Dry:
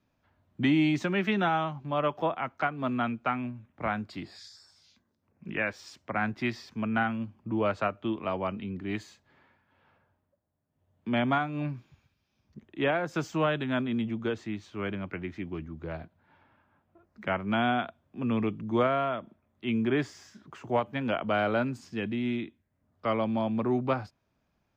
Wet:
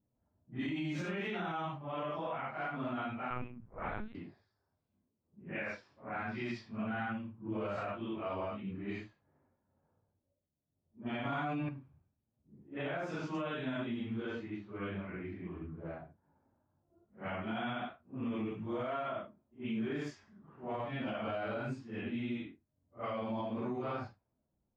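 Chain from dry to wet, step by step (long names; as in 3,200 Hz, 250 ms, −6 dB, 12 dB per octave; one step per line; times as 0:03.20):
random phases in long frames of 200 ms
low-pass that shuts in the quiet parts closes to 580 Hz, open at −24.5 dBFS
brickwall limiter −23.5 dBFS, peak gain reduction 10.5 dB
0:03.30–0:04.15: linear-prediction vocoder at 8 kHz pitch kept
0:11.25–0:11.69: envelope flattener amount 100%
level −6 dB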